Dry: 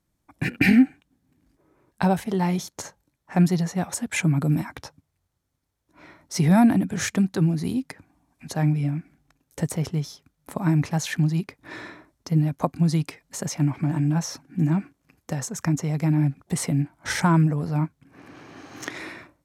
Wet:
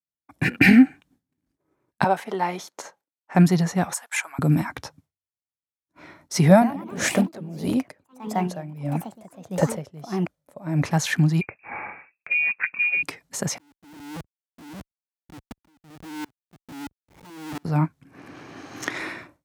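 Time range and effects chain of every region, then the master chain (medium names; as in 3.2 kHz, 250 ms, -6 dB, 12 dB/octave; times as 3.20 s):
2.04–3.35 s: high-pass 430 Hz + treble shelf 3.5 kHz -9 dB + band-stop 1.7 kHz, Q 29
3.93–4.39 s: high-pass 830 Hz 24 dB/octave + peaking EQ 3.5 kHz -6 dB 2.1 oct
6.49–10.84 s: peaking EQ 570 Hz +14.5 dB 0.4 oct + ever faster or slower copies 122 ms, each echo +3 st, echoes 3, each echo -6 dB + logarithmic tremolo 1.6 Hz, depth 20 dB
11.41–13.03 s: compression, threshold -24 dBFS + frequency inversion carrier 2.6 kHz
13.58–17.65 s: vowel filter u + Schmitt trigger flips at -40.5 dBFS + sawtooth tremolo in dB swelling 1.5 Hz, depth 32 dB
whole clip: expander -53 dBFS; high-pass 67 Hz; dynamic bell 1.3 kHz, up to +4 dB, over -40 dBFS, Q 0.7; trim +2.5 dB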